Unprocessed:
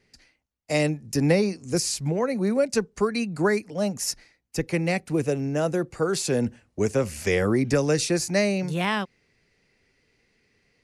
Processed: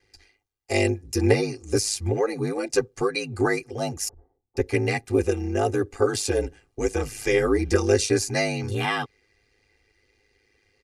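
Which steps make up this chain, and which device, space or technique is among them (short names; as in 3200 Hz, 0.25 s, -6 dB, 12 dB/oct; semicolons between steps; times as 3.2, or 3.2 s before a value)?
4.08–4.57 steep low-pass 960 Hz 36 dB/oct; comb 6.3 ms, depth 58%; ring-modulated robot voice (ring modulator 52 Hz; comb 2.5 ms, depth 87%)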